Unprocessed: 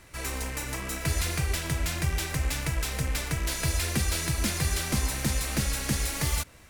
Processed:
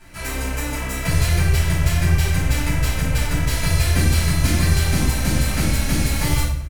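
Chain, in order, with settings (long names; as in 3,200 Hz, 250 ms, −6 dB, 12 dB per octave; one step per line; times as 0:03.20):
on a send: repeating echo 98 ms, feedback 32%, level −13 dB
on the sum: rectangular room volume 640 cubic metres, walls furnished, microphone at 8.2 metres
level −4 dB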